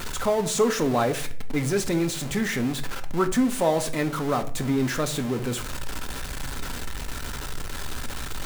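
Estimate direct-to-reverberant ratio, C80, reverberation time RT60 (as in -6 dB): 7.0 dB, 19.0 dB, 0.50 s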